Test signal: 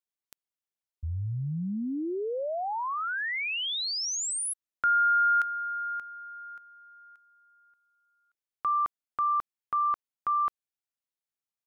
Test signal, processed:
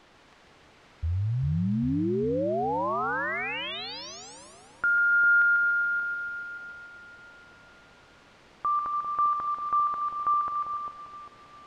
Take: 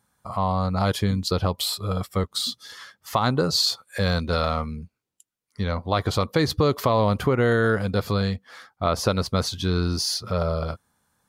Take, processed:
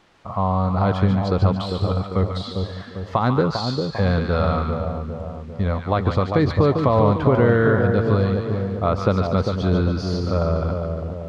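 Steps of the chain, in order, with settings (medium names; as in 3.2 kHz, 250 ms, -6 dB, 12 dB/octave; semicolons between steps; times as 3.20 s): added noise white -50 dBFS; tape spacing loss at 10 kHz 33 dB; on a send: two-band feedback delay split 960 Hz, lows 398 ms, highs 144 ms, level -5 dB; on the sum: trim +4.5 dB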